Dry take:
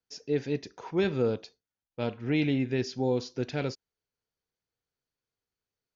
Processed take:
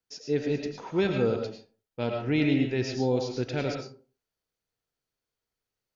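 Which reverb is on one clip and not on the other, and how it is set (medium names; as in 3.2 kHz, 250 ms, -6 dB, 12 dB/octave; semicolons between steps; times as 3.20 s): algorithmic reverb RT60 0.4 s, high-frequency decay 0.55×, pre-delay 65 ms, DRR 3 dB; trim +1 dB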